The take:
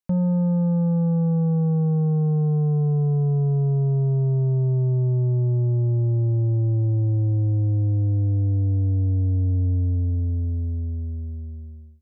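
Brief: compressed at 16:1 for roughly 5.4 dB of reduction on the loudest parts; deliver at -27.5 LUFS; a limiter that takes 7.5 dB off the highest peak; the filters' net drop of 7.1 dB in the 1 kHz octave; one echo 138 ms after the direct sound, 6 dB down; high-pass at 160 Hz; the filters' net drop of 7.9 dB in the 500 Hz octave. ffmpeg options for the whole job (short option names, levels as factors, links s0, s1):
-af "highpass=160,equalizer=f=500:t=o:g=-9,equalizer=f=1000:t=o:g=-5.5,acompressor=threshold=0.0447:ratio=16,alimiter=level_in=1.68:limit=0.0631:level=0:latency=1,volume=0.596,aecho=1:1:138:0.501,volume=1.88"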